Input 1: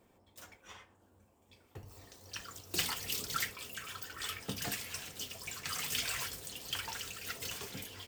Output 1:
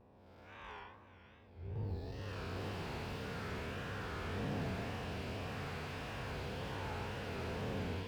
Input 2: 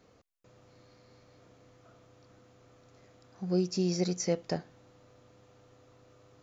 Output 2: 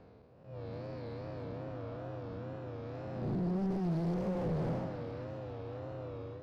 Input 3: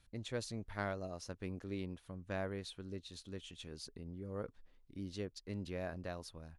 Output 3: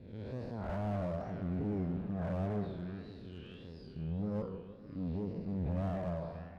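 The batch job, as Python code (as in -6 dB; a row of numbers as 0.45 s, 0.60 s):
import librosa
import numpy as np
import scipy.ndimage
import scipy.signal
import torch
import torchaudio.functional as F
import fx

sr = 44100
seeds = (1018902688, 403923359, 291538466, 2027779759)

p1 = fx.spec_blur(x, sr, span_ms=293.0)
p2 = scipy.signal.sosfilt(scipy.signal.butter(2, 41.0, 'highpass', fs=sr, output='sos'), p1)
p3 = fx.noise_reduce_blind(p2, sr, reduce_db=10)
p4 = fx.graphic_eq_31(p3, sr, hz=(315, 1250, 2000, 3150, 5000), db=(-4, -8, -8, -6, 4))
p5 = fx.over_compress(p4, sr, threshold_db=-45.0, ratio=-1.0)
p6 = p4 + F.gain(torch.from_numpy(p5), 0.0).numpy()
p7 = fx.tube_stage(p6, sr, drive_db=43.0, bias=0.4)
p8 = p7 + fx.echo_split(p7, sr, split_hz=1300.0, low_ms=153, high_ms=552, feedback_pct=52, wet_db=-11.0, dry=0)
p9 = fx.wow_flutter(p8, sr, seeds[0], rate_hz=2.1, depth_cents=110.0)
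p10 = fx.air_absorb(p9, sr, metres=430.0)
p11 = fx.slew_limit(p10, sr, full_power_hz=2.4)
y = F.gain(torch.from_numpy(p11), 12.5).numpy()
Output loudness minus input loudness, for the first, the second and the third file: -4.5 LU, -6.5 LU, +6.0 LU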